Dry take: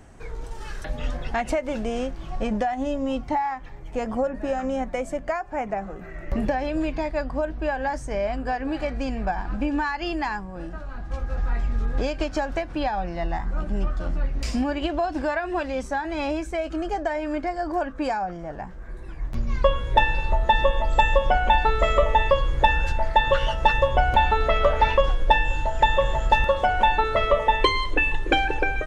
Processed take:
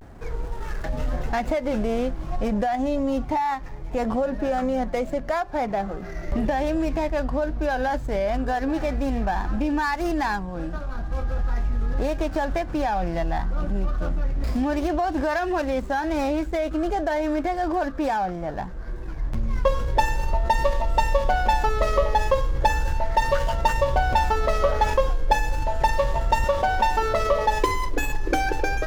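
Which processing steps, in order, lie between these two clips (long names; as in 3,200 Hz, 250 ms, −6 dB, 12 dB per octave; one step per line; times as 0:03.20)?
running median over 15 samples
in parallel at −3 dB: compressor whose output falls as the input rises −28 dBFS, ratio −1
on the sum: pitch vibrato 0.35 Hz 47 cents
level −2 dB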